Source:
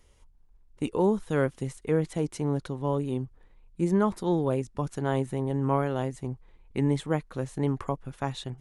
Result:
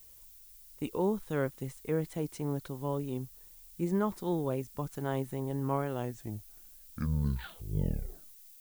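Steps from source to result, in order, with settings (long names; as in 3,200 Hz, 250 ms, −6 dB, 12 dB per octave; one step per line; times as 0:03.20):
turntable brake at the end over 2.72 s
background noise violet −49 dBFS
level −6 dB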